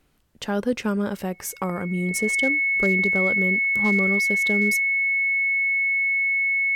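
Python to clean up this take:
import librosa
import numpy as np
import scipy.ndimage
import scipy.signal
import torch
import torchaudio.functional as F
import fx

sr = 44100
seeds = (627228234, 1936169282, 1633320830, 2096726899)

y = fx.fix_declip(x, sr, threshold_db=-13.0)
y = fx.notch(y, sr, hz=2200.0, q=30.0)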